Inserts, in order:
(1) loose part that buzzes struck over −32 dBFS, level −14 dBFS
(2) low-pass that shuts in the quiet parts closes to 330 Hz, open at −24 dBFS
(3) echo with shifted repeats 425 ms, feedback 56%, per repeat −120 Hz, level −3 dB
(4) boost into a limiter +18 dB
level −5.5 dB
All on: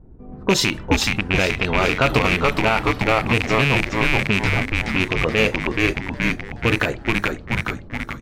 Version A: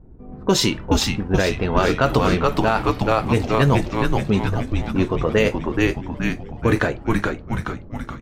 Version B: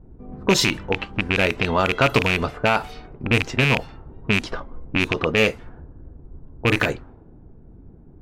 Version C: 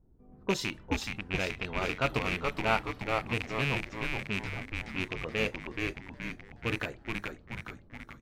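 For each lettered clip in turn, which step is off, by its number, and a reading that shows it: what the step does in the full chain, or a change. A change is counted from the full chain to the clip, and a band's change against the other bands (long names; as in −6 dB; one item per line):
1, 2 kHz band −8.0 dB
3, change in momentary loudness spread +9 LU
4, change in crest factor +8.0 dB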